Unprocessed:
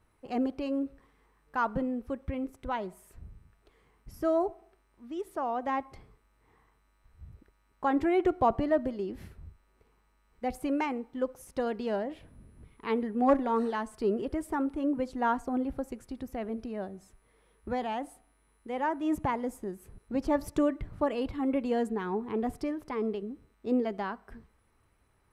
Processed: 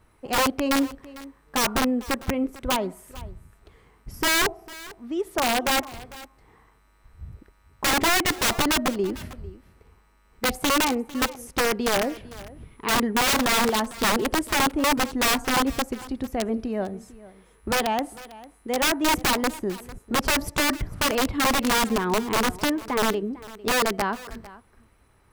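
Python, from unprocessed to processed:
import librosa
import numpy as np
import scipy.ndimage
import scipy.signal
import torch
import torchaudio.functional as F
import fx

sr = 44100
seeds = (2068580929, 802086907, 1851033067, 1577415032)

y = (np.mod(10.0 ** (25.0 / 20.0) * x + 1.0, 2.0) - 1.0) / 10.0 ** (25.0 / 20.0)
y = y + 10.0 ** (-19.0 / 20.0) * np.pad(y, (int(450 * sr / 1000.0), 0))[:len(y)]
y = y * 10.0 ** (9.0 / 20.0)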